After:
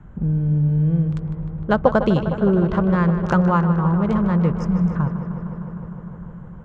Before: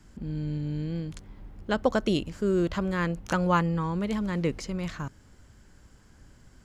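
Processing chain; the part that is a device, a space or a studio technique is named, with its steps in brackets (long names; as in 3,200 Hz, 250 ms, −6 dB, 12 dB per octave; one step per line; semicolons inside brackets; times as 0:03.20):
adaptive Wiener filter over 9 samples
jukebox (low-pass filter 5,300 Hz 12 dB per octave; low shelf with overshoot 210 Hz +9 dB, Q 3; downward compressor, threshold −19 dBFS, peak gain reduction 7.5 dB)
healed spectral selection 0:04.60–0:04.93, 260–4,900 Hz before
flat-topped bell 600 Hz +10 dB 2.9 octaves
feedback echo with a low-pass in the loop 153 ms, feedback 84%, low-pass 5,000 Hz, level −11 dB
level +1.5 dB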